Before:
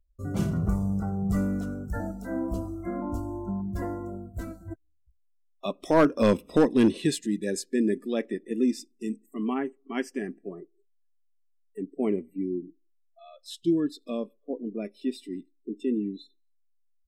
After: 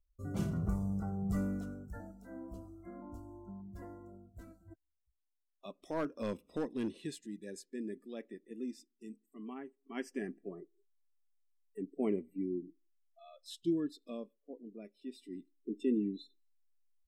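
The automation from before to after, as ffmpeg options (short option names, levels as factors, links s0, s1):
-af "volume=4.73,afade=t=out:st=1.49:d=0.57:silence=0.375837,afade=t=in:st=9.76:d=0.45:silence=0.316228,afade=t=out:st=13.37:d=1.16:silence=0.354813,afade=t=in:st=15.08:d=0.68:silence=0.266073"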